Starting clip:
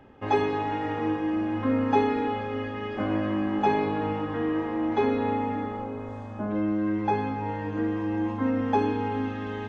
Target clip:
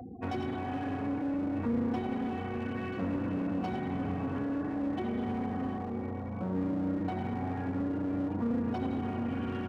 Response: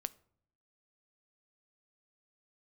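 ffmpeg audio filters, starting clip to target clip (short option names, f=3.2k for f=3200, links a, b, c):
-filter_complex "[0:a]asplit=5[a][b][c][d][e];[b]adelay=86,afreqshift=30,volume=-8dB[f];[c]adelay=172,afreqshift=60,volume=-16.2dB[g];[d]adelay=258,afreqshift=90,volume=-24.4dB[h];[e]adelay=344,afreqshift=120,volume=-32.5dB[i];[a][f][g][h][i]amix=inputs=5:normalize=0,asplit=2[j][k];[k]aeval=exprs='0.0447*(abs(mod(val(0)/0.0447+3,4)-2)-1)':c=same,volume=-11dB[l];[j][l]amix=inputs=2:normalize=0,bass=f=250:g=3,treble=f=4k:g=13,asetrate=39289,aresample=44100,atempo=1.12246,asplit=2[m][n];[1:a]atrim=start_sample=2205[o];[n][o]afir=irnorm=-1:irlink=0,volume=-3dB[p];[m][p]amix=inputs=2:normalize=0,acrossover=split=190[q][r];[r]acompressor=threshold=-27dB:ratio=4[s];[q][s]amix=inputs=2:normalize=0,afftfilt=real='re*gte(hypot(re,im),0.0141)':imag='im*gte(hypot(re,im),0.0141)':win_size=1024:overlap=0.75,bandreject=f=400:w=12,acompressor=mode=upward:threshold=-30dB:ratio=2.5,equalizer=f=260:w=3.7:g=5.5,aeval=exprs='clip(val(0),-1,0.0473)':c=same,highpass=70,volume=-7.5dB"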